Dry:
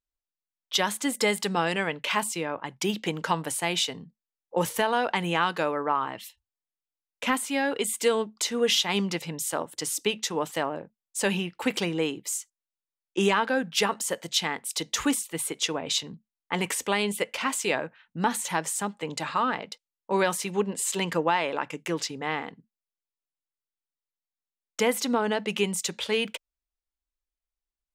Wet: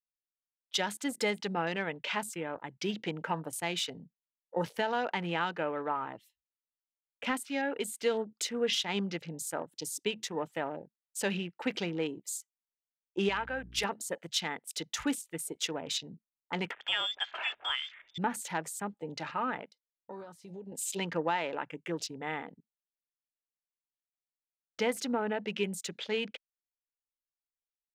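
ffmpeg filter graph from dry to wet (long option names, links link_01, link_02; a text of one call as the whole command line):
ffmpeg -i in.wav -filter_complex "[0:a]asettb=1/sr,asplit=3[link_01][link_02][link_03];[link_01]atrim=end=13.294[link_04];[link_02]atrim=start=13.29:end=13.84,asetpts=PTS-STARTPTS,afade=type=in:duration=0.004:curve=qsin,afade=type=out:start_time=0.546:duration=0.004:curve=qsin,lowshelf=frequency=490:gain=-12,aeval=exprs='clip(val(0),-1,0.119)':channel_layout=same,aeval=exprs='val(0)+0.00631*(sin(2*PI*60*n/s)+sin(2*PI*2*60*n/s)/2+sin(2*PI*3*60*n/s)/3+sin(2*PI*4*60*n/s)/4+sin(2*PI*5*60*n/s)/5)':channel_layout=same[link_05];[link_03]atrim=start=13.836[link_06];[link_04][link_05]acrossfade=duration=0.004:curve1=hsin:curve2=qsin[link_07];[link_07][link_06]acrossfade=duration=0.004:curve1=qsin:curve2=hsin,asettb=1/sr,asplit=3[link_08][link_09][link_10];[link_08]atrim=end=16.714[link_11];[link_09]atrim=start=16.71:end=18.18,asetpts=PTS-STARTPTS,afade=type=in:duration=0.004:curve=qsin,afade=type=out:start_time=1.466:duration=0.004:curve=qsin,aeval=exprs='val(0)+0.5*0.0133*sgn(val(0))':channel_layout=same,lowpass=frequency=3100:width_type=q:width=0.5098,lowpass=frequency=3100:width_type=q:width=0.6013,lowpass=frequency=3100:width_type=q:width=0.9,lowpass=frequency=3100:width_type=q:width=2.563,afreqshift=-3700[link_12];[link_10]atrim=start=18.176[link_13];[link_11][link_12]acrossfade=duration=0.004:curve1=hsin:curve2=qsin[link_14];[link_14][link_13]acrossfade=duration=0.004:curve1=qsin:curve2=hsin,asettb=1/sr,asplit=3[link_15][link_16][link_17];[link_15]atrim=end=19.684[link_18];[link_16]atrim=start=19.68:end=20.72,asetpts=PTS-STARTPTS,afade=type=in:duration=0.004:curve=qsin,afade=type=out:start_time=1.036:duration=0.004:curve=qsin,equalizer=frequency=4500:width=1.7:gain=8,acompressor=threshold=-34dB:ratio=8:attack=3.2:release=140:knee=1:detection=peak[link_19];[link_17]atrim=start=20.716[link_20];[link_18][link_19]acrossfade=duration=0.004:curve1=hsin:curve2=qsin[link_21];[link_21][link_20]acrossfade=duration=0.004:curve1=qsin:curve2=hsin,bandreject=frequency=1100:width=7.6,afwtdn=0.0112,adynamicequalizer=threshold=0.01:dfrequency=3600:dqfactor=0.7:tfrequency=3600:tqfactor=0.7:attack=5:release=100:ratio=0.375:range=3:mode=cutabove:tftype=highshelf,volume=-6dB" out.wav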